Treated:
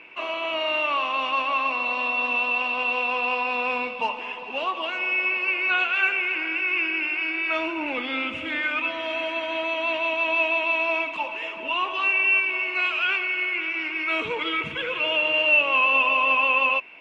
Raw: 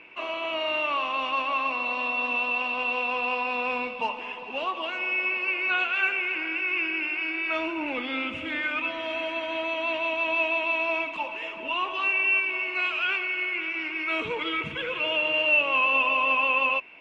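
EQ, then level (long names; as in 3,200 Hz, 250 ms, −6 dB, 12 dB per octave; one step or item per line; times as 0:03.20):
low-shelf EQ 320 Hz −4 dB
+3.0 dB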